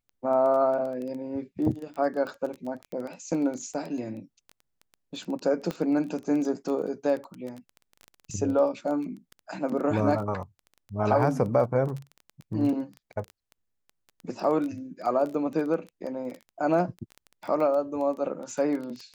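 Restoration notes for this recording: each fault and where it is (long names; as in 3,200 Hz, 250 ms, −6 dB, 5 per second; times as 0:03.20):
surface crackle 14 per second −32 dBFS
0:05.71: click −18 dBFS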